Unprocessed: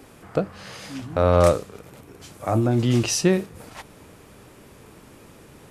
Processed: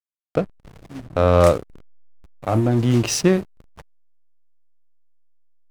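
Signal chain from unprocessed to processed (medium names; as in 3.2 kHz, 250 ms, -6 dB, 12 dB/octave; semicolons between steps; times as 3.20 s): hysteresis with a dead band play -26 dBFS; trim +2.5 dB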